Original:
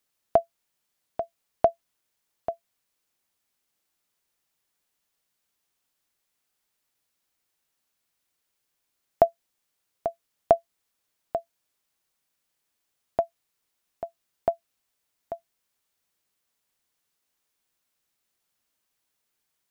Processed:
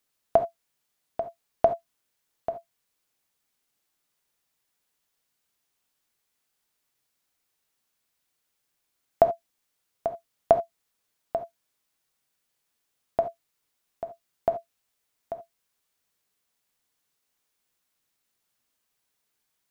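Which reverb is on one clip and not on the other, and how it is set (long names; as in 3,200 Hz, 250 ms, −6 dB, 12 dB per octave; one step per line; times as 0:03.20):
reverb whose tail is shaped and stops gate 100 ms flat, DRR 8 dB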